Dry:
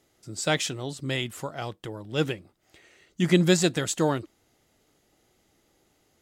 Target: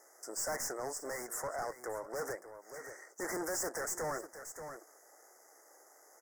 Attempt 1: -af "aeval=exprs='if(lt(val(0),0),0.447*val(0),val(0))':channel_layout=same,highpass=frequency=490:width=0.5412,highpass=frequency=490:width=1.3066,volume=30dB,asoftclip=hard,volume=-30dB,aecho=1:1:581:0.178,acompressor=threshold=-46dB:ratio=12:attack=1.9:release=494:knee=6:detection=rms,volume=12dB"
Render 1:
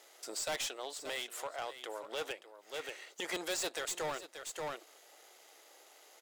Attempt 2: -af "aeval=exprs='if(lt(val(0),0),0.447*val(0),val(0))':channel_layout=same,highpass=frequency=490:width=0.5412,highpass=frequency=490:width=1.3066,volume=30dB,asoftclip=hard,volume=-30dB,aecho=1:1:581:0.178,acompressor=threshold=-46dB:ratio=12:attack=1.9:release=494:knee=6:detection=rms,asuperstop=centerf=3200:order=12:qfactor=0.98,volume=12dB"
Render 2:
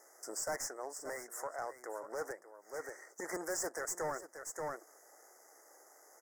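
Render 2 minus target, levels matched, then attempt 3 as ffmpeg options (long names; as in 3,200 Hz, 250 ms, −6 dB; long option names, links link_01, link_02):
gain into a clipping stage and back: distortion −5 dB
-af "aeval=exprs='if(lt(val(0),0),0.447*val(0),val(0))':channel_layout=same,highpass=frequency=490:width=0.5412,highpass=frequency=490:width=1.3066,volume=40.5dB,asoftclip=hard,volume=-40.5dB,aecho=1:1:581:0.178,acompressor=threshold=-46dB:ratio=12:attack=1.9:release=494:knee=6:detection=rms,asuperstop=centerf=3200:order=12:qfactor=0.98,volume=12dB"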